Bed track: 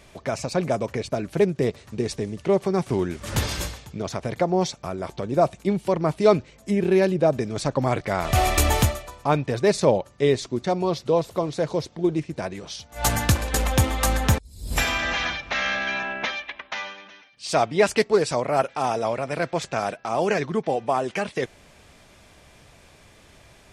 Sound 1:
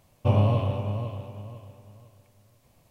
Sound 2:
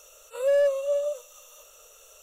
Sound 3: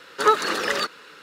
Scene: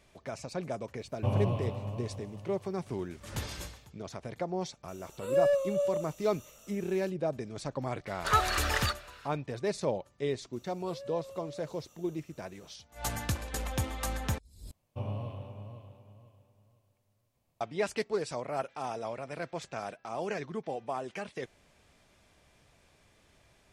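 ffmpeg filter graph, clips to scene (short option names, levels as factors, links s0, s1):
-filter_complex "[1:a]asplit=2[s0][s1];[2:a]asplit=2[s2][s3];[0:a]volume=0.237[s4];[3:a]highpass=810[s5];[s3]acompressor=threshold=0.0282:ratio=6:attack=3.2:release=140:knee=1:detection=peak[s6];[s4]asplit=2[s7][s8];[s7]atrim=end=14.714[s9];[s1]atrim=end=2.9,asetpts=PTS-STARTPTS,volume=0.168[s10];[s8]atrim=start=17.606[s11];[s0]atrim=end=2.9,asetpts=PTS-STARTPTS,volume=0.398,afade=t=in:d=0.004:c=hsin,afade=t=out:st=2.896:d=0.004:c=hsin,adelay=980[s12];[s2]atrim=end=2.22,asetpts=PTS-STARTPTS,volume=0.596,afade=t=in:d=0.004:c=hsin,afade=t=out:st=2.216:d=0.004:c=hsin,adelay=4880[s13];[s5]atrim=end=1.22,asetpts=PTS-STARTPTS,volume=0.473,afade=t=in:d=0.004:c=hsin,afade=t=out:st=1.216:d=0.004:c=hsin,adelay=8060[s14];[s6]atrim=end=2.22,asetpts=PTS-STARTPTS,volume=0.211,afade=t=in:d=0.004:c=hsin,afade=t=out:st=2.216:d=0.004:c=hsin,adelay=10530[s15];[s9][s10]acrossfade=d=0.004:c1=hsin:c2=hsin[s16];[s16][s11]acrossfade=d=0.004:c1=hsin:c2=hsin[s17];[s17][s12][s13][s14][s15]amix=inputs=5:normalize=0"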